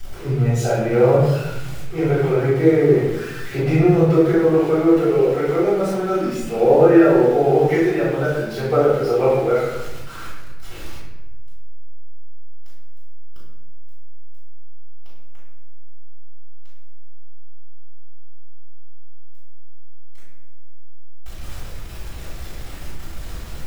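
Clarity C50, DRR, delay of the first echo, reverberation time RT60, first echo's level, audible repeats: −1.0 dB, −16.0 dB, no echo audible, 0.95 s, no echo audible, no echo audible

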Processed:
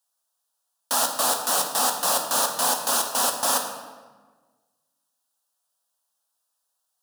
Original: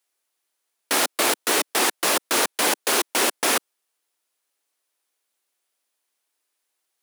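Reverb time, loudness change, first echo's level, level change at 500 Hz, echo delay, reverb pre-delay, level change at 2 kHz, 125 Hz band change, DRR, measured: 1.4 s, −1.0 dB, no echo audible, −4.0 dB, no echo audible, 6 ms, −8.0 dB, −1.0 dB, 3.0 dB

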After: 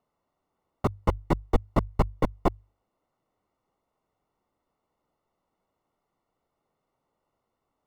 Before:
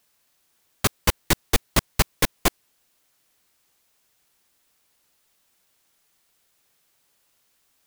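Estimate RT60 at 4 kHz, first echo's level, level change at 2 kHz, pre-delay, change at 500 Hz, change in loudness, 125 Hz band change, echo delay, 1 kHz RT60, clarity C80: no reverb audible, no echo audible, −15.0 dB, no reverb audible, 0.0 dB, −5.5 dB, −0.5 dB, no echo audible, no reverb audible, no reverb audible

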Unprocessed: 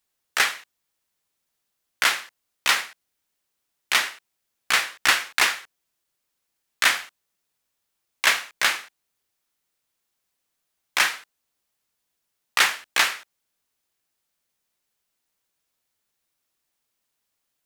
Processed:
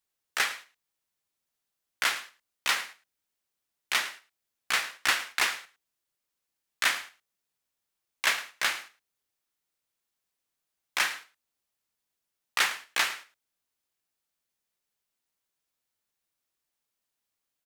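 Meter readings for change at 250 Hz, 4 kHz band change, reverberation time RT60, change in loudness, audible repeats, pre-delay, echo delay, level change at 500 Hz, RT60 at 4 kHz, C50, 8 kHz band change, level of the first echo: −6.5 dB, −6.5 dB, no reverb audible, −6.5 dB, 1, no reverb audible, 108 ms, −6.5 dB, no reverb audible, no reverb audible, −6.5 dB, −17.0 dB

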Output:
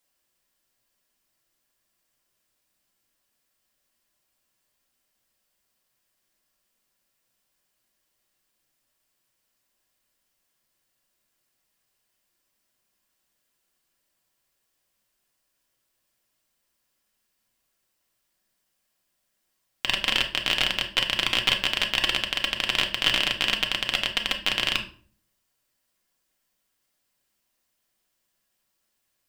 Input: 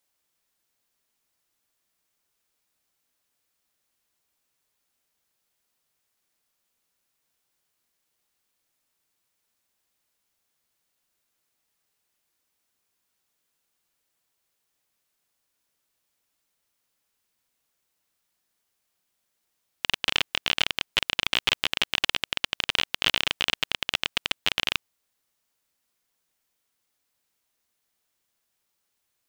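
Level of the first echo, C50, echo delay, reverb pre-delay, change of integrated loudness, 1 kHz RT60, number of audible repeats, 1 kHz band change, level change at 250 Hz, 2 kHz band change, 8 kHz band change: no echo audible, 11.0 dB, no echo audible, 3 ms, +2.0 dB, 0.45 s, no echo audible, +1.5 dB, +3.5 dB, +2.0 dB, +1.0 dB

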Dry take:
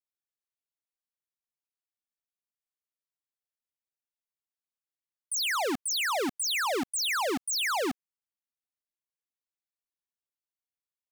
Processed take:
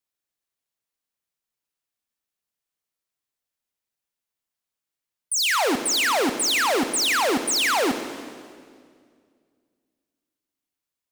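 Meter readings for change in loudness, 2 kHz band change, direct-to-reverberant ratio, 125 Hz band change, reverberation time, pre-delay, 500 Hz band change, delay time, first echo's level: +7.5 dB, +7.5 dB, 8.0 dB, +8.5 dB, 2.1 s, 27 ms, +8.0 dB, no echo audible, no echo audible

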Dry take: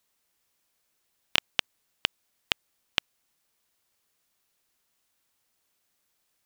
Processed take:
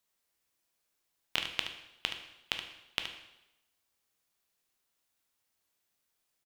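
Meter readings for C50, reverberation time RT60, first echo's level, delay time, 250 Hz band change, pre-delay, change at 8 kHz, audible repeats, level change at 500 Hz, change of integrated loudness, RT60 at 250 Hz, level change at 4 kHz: 6.0 dB, 0.90 s, −9.5 dB, 73 ms, −5.5 dB, 5 ms, −5.5 dB, 1, −5.5 dB, −6.0 dB, 0.85 s, −5.5 dB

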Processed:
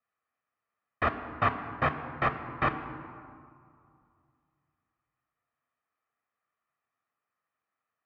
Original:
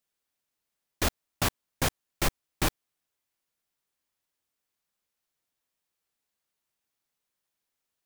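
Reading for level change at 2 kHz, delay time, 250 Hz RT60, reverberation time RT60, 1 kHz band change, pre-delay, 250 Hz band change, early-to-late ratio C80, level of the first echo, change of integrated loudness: +2.5 dB, no echo audible, 2.5 s, 2.4 s, +7.0 dB, 3 ms, −1.0 dB, 10.5 dB, no echo audible, 0.0 dB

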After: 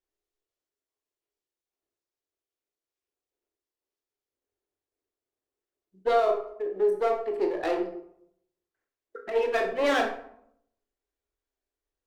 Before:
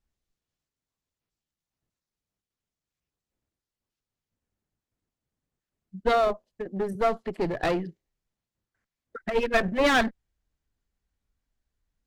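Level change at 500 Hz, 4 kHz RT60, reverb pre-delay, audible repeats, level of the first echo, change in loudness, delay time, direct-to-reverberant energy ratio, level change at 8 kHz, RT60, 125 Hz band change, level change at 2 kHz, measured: +1.5 dB, 0.40 s, 21 ms, no echo audible, no echo audible, −1.0 dB, no echo audible, 2.0 dB, can't be measured, 0.70 s, below −15 dB, −4.5 dB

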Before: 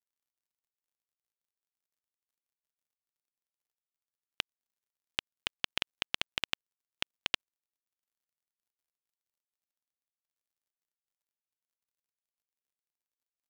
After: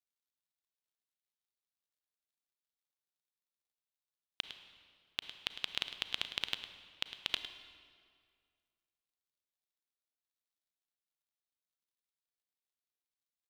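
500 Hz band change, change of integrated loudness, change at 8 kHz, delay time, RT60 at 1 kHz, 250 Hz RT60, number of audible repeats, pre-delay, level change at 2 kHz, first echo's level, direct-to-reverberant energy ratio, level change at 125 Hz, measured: −5.5 dB, −3.0 dB, −5.0 dB, 106 ms, 2.0 s, 2.2 s, 1, 32 ms, −5.0 dB, −12.5 dB, 8.0 dB, −5.5 dB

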